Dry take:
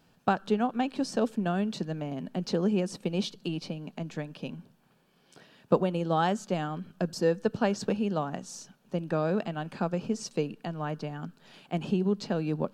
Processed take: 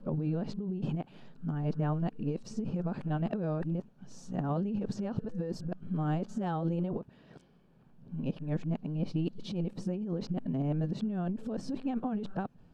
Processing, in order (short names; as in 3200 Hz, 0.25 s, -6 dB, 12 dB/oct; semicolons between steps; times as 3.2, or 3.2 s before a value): whole clip reversed; tilt -3.5 dB/oct; negative-ratio compressor -25 dBFS, ratio -1; gain -6.5 dB